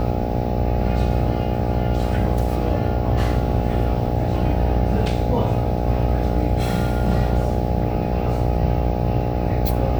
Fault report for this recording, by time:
buzz 60 Hz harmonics 14 -24 dBFS

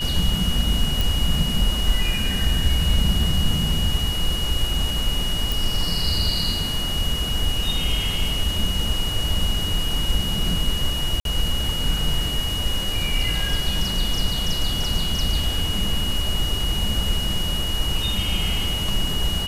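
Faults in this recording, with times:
whine 2.9 kHz -26 dBFS
1.01 s: pop
5.52 s: pop
11.20–11.25 s: dropout 52 ms

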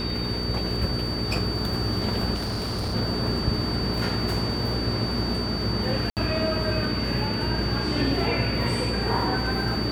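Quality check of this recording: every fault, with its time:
crackle 12 per s -32 dBFS
hum 60 Hz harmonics 7 -30 dBFS
whine 4.6 kHz -31 dBFS
2.34–2.95 s: clipped -25 dBFS
6.10–6.17 s: dropout 68 ms

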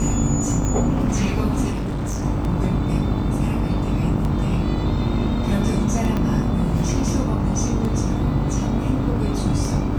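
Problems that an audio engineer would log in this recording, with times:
buzz 50 Hz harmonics 29 -25 dBFS
tick 33 1/3 rpm -15 dBFS
1.71–2.25 s: clipped -21.5 dBFS
6.17 s: pop -12 dBFS

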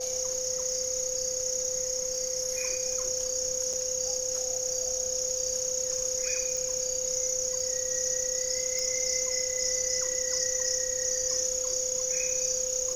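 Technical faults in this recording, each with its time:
crackle 33 per s -37 dBFS
whine 510 Hz -34 dBFS
3.73–3.74 s: dropout 5.2 ms
6.57 s: pop
8.79 s: pop

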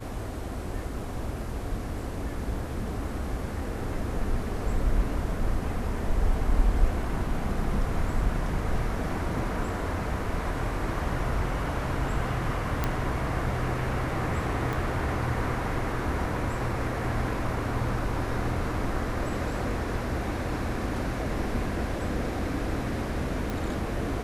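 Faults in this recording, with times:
12.84 s: pop -12 dBFS
14.73 s: pop
23.50 s: pop

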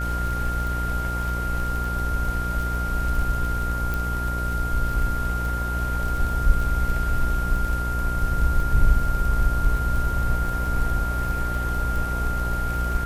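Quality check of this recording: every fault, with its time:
buzz 60 Hz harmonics 26 -27 dBFS
crackle 32 per s -28 dBFS
whine 1.4 kHz -28 dBFS
3.94 s: pop

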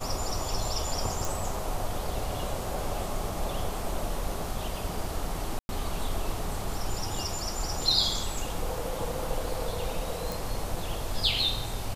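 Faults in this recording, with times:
1.25 s: pop
5.59–5.69 s: dropout 101 ms
10.32 s: pop

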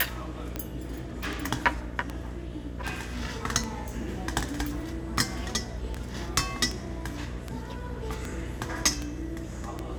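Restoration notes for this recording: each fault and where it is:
buzz 60 Hz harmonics 11 -38 dBFS
tick 78 rpm -18 dBFS

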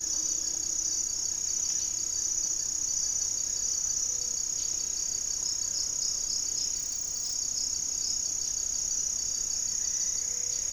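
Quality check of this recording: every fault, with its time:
6.76–7.35 s: clipped -28.5 dBFS

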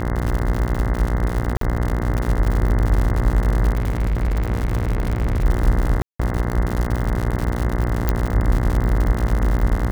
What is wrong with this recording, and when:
buzz 60 Hz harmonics 35 -23 dBFS
crackle 130 per s -22 dBFS
1.57–1.61 s: dropout 43 ms
3.75–5.46 s: clipped -16 dBFS
6.02–6.20 s: dropout 175 ms
8.09 s: pop -5 dBFS

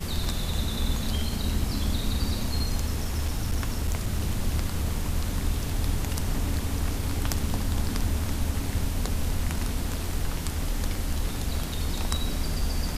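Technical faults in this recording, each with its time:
3.00–4.21 s: clipped -20.5 dBFS

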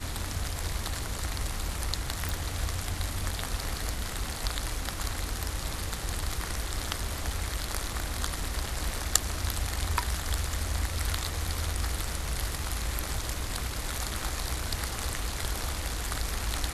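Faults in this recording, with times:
2.29 s: pop

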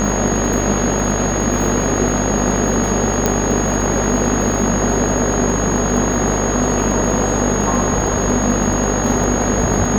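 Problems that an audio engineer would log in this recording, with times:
buzz 50 Hz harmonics 39 -21 dBFS
crackle 21 per s -22 dBFS
whine 6.6 kHz -23 dBFS
3.26 s: pop -1 dBFS

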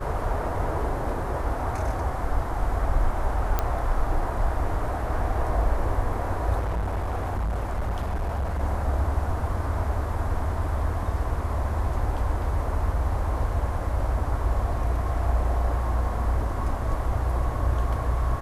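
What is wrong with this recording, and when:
3.59 s: pop -10 dBFS
6.59–8.61 s: clipped -23.5 dBFS

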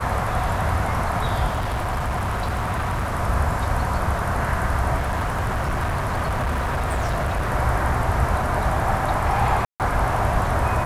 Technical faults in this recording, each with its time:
1.47–3.15 s: clipped -20.5 dBFS
4.95–7.51 s: clipped -19.5 dBFS
9.65–9.80 s: dropout 148 ms

